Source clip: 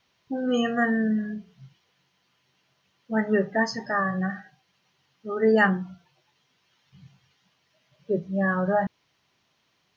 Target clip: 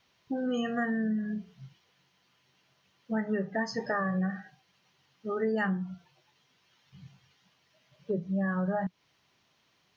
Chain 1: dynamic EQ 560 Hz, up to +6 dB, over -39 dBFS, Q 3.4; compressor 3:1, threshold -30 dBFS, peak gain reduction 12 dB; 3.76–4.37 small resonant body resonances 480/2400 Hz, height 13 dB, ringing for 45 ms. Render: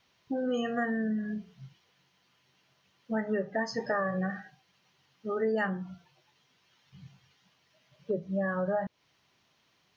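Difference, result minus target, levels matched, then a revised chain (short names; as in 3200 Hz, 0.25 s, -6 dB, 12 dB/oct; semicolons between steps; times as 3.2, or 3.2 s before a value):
500 Hz band +2.5 dB
dynamic EQ 180 Hz, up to +6 dB, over -39 dBFS, Q 3.4; compressor 3:1, threshold -30 dBFS, peak gain reduction 11.5 dB; 3.76–4.37 small resonant body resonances 480/2400 Hz, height 13 dB, ringing for 45 ms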